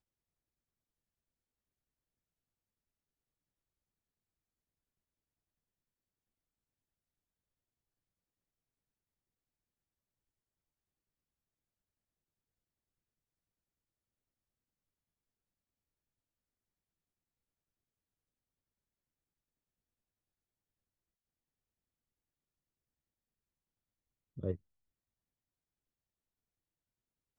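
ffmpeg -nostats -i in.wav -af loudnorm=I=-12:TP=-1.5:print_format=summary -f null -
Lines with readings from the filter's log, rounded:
Input Integrated:    -42.8 LUFS
Input True Peak:     -22.9 dBTP
Input LRA:             2.7 LU
Input Threshold:     -53.2 LUFS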